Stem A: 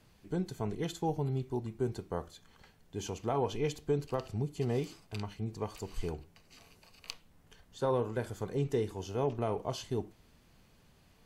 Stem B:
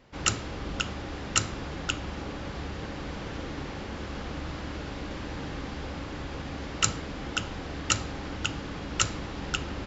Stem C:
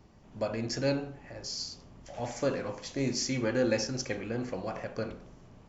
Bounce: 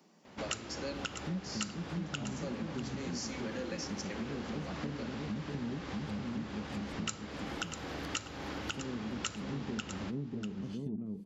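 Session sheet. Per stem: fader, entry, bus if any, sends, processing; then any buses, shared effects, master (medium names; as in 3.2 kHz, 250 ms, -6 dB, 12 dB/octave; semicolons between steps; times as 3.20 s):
+1.0 dB, 0.95 s, no send, echo send -3.5 dB, low-pass that closes with the level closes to 690 Hz, closed at -27 dBFS; FFT filter 130 Hz 0 dB, 200 Hz +14 dB, 680 Hz -30 dB, 6.4 kHz -2 dB, 12 kHz +12 dB; overdrive pedal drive 17 dB, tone 1.3 kHz, clips at -15.5 dBFS
+2.5 dB, 0.25 s, no send, echo send -14 dB, bass shelf 110 Hz -9 dB
-4.0 dB, 0.00 s, no send, no echo send, steep high-pass 160 Hz 72 dB/octave; treble shelf 3.6 kHz +8 dB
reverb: none
echo: delay 643 ms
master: high-pass 50 Hz; compression 4:1, threshold -37 dBFS, peak gain reduction 18 dB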